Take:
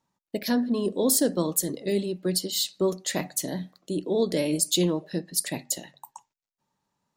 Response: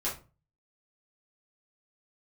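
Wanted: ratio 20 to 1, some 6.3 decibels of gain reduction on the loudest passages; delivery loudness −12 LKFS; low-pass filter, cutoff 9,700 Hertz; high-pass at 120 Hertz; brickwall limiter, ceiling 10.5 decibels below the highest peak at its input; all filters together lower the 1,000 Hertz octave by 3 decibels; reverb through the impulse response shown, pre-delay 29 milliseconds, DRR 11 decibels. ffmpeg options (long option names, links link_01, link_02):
-filter_complex "[0:a]highpass=120,lowpass=9700,equalizer=frequency=1000:width_type=o:gain=-4,acompressor=threshold=-25dB:ratio=20,alimiter=level_in=2dB:limit=-24dB:level=0:latency=1,volume=-2dB,asplit=2[link_01][link_02];[1:a]atrim=start_sample=2205,adelay=29[link_03];[link_02][link_03]afir=irnorm=-1:irlink=0,volume=-16.5dB[link_04];[link_01][link_04]amix=inputs=2:normalize=0,volume=23dB"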